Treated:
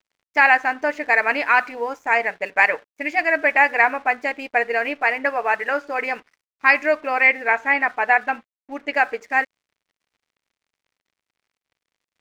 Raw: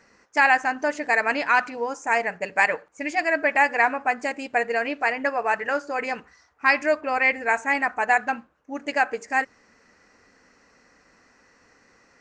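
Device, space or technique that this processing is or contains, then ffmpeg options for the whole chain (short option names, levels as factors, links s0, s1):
pocket radio on a weak battery: -filter_complex "[0:a]highpass=260,lowpass=4200,aeval=exprs='sgn(val(0))*max(abs(val(0))-0.00251,0)':c=same,equalizer=f=2200:t=o:w=0.49:g=4.5,asettb=1/sr,asplit=3[s0][s1][s2];[s0]atrim=end=7.274[s3];[s1]atrim=start=7.27:end=8.94,asetpts=PTS-STARTPTS,afade=t=in:d=0.004:c=qsin,afade=t=out:st=1.666:d=0.004:c=qsin,acrossover=split=4900[s4][s5];[s5]acompressor=threshold=0.00112:ratio=4:attack=1:release=60[s6];[s4][s6]amix=inputs=2:normalize=0[s7];[s2]atrim=start=8.936[s8];[s3][s7]acrossfade=d=0.004:c1=hsin:c2=qsin[s9];[s9][s8]acrossfade=d=0.004:c1=qsin:c2=hsin,volume=1.33"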